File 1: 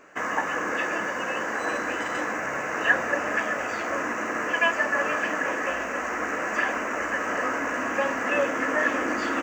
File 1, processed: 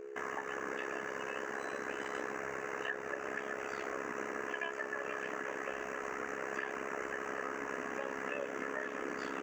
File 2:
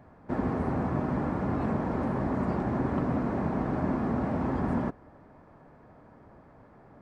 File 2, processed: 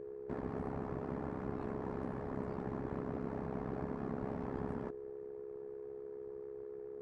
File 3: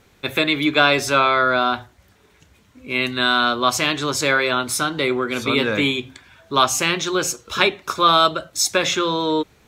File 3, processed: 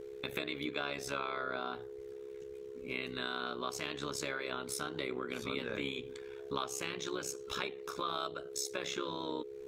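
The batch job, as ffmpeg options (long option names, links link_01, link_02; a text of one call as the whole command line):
ffmpeg -i in.wav -af "acompressor=threshold=-28dB:ratio=4,aeval=exprs='val(0)+0.02*sin(2*PI*420*n/s)':channel_layout=same,tremolo=f=67:d=0.824,volume=-6dB" out.wav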